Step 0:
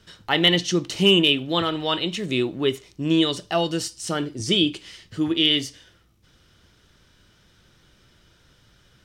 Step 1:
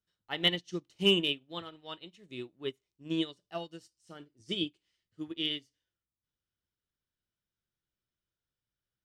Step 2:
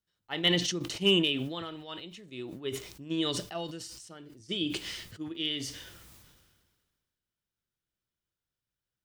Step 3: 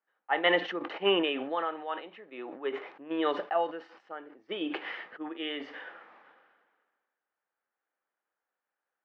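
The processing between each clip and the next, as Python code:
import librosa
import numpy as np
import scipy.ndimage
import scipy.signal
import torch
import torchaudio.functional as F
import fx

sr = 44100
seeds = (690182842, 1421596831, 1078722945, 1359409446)

y1 = fx.upward_expand(x, sr, threshold_db=-33.0, expansion=2.5)
y1 = F.gain(torch.from_numpy(y1), -7.0).numpy()
y2 = fx.sustainer(y1, sr, db_per_s=35.0)
y3 = fx.cabinet(y2, sr, low_hz=320.0, low_slope=24, high_hz=2200.0, hz=(360.0, 510.0, 800.0, 1200.0, 1700.0), db=(-6, 4, 10, 5, 5))
y3 = F.gain(torch.from_numpy(y3), 5.0).numpy()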